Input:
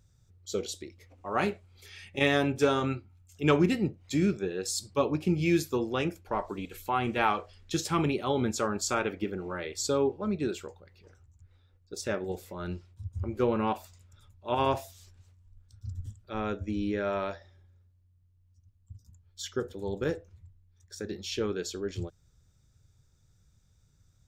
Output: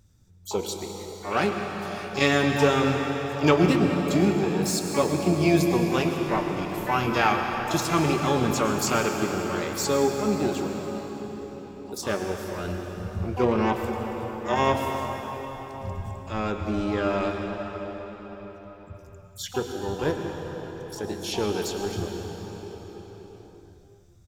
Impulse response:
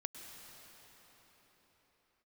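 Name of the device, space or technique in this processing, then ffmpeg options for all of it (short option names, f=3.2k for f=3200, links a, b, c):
shimmer-style reverb: -filter_complex "[0:a]asplit=3[a][b][c];[a]afade=t=out:st=6.8:d=0.02[d];[b]asplit=2[e][f];[f]adelay=31,volume=-8dB[g];[e][g]amix=inputs=2:normalize=0,afade=t=in:st=6.8:d=0.02,afade=t=out:st=7.2:d=0.02[h];[c]afade=t=in:st=7.2:d=0.02[i];[d][h][i]amix=inputs=3:normalize=0,asplit=2[j][k];[k]asetrate=88200,aresample=44100,atempo=0.5,volume=-10dB[l];[j][l]amix=inputs=2:normalize=0[m];[1:a]atrim=start_sample=2205[n];[m][n]afir=irnorm=-1:irlink=0,volume=7dB"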